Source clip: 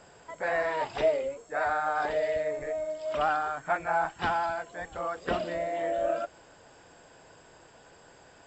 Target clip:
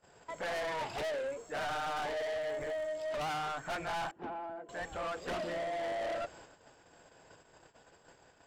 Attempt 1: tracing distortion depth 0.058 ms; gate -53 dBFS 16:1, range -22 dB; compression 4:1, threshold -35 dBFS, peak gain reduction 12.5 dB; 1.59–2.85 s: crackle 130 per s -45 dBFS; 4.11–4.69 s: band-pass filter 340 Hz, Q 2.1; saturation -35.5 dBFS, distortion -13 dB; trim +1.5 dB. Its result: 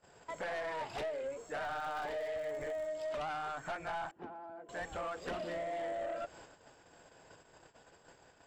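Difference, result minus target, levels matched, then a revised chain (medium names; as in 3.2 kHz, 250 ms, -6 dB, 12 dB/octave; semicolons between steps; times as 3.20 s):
compression: peak gain reduction +12.5 dB
tracing distortion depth 0.058 ms; gate -53 dBFS 16:1, range -22 dB; 1.59–2.85 s: crackle 130 per s -45 dBFS; 4.11–4.69 s: band-pass filter 340 Hz, Q 2.1; saturation -35.5 dBFS, distortion -6 dB; trim +1.5 dB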